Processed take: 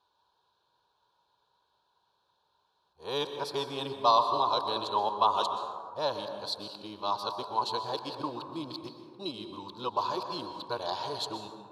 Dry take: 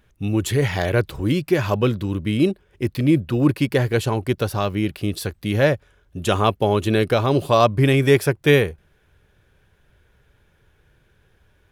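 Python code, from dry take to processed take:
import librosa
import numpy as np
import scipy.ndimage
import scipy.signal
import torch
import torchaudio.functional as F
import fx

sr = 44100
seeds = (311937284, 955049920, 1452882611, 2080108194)

y = np.flip(x).copy()
y = fx.double_bandpass(y, sr, hz=2000.0, octaves=2.1)
y = fx.rev_plate(y, sr, seeds[0], rt60_s=1.9, hf_ratio=0.35, predelay_ms=110, drr_db=6.5)
y = F.gain(torch.from_numpy(y), 4.0).numpy()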